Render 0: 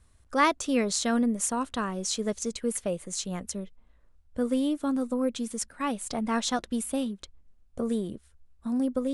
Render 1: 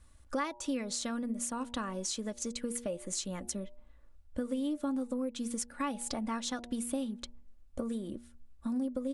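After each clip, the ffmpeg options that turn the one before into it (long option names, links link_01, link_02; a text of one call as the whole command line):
ffmpeg -i in.wav -af "bandreject=frequency=119.3:width_type=h:width=4,bandreject=frequency=238.6:width_type=h:width=4,bandreject=frequency=357.9:width_type=h:width=4,bandreject=frequency=477.2:width_type=h:width=4,bandreject=frequency=596.5:width_type=h:width=4,bandreject=frequency=715.8:width_type=h:width=4,bandreject=frequency=835.1:width_type=h:width=4,bandreject=frequency=954.4:width_type=h:width=4,acompressor=threshold=-33dB:ratio=10,aecho=1:1:3.5:0.42" out.wav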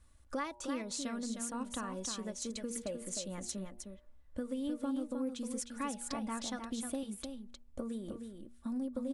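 ffmpeg -i in.wav -af "aecho=1:1:309:0.473,volume=-4dB" out.wav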